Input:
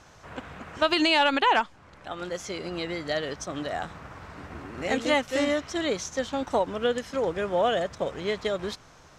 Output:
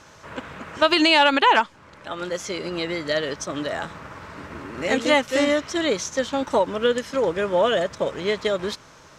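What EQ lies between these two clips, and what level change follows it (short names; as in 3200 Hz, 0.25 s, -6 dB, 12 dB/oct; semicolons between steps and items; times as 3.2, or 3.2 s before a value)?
Butterworth band-stop 740 Hz, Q 7.8; low shelf 76 Hz -11.5 dB; +5.5 dB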